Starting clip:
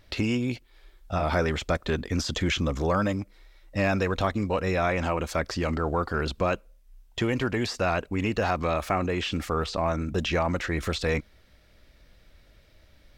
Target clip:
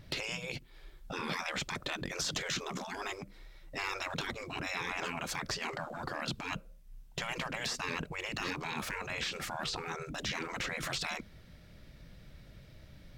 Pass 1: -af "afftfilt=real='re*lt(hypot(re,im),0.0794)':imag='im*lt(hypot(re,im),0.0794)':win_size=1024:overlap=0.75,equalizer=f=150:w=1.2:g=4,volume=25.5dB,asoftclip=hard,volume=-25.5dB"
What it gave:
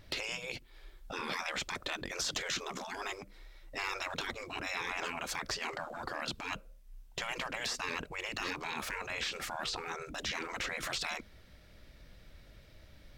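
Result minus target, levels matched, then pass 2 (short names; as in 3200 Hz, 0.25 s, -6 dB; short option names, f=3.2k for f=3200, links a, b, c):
125 Hz band -6.5 dB
-af "afftfilt=real='re*lt(hypot(re,im),0.0794)':imag='im*lt(hypot(re,im),0.0794)':win_size=1024:overlap=0.75,equalizer=f=150:w=1.2:g=13.5,volume=25.5dB,asoftclip=hard,volume=-25.5dB"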